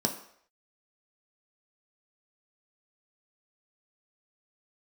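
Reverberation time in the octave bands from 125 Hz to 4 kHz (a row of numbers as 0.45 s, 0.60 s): 0.40 s, 0.50 s, 0.65 s, 0.65 s, 0.65 s, 0.60 s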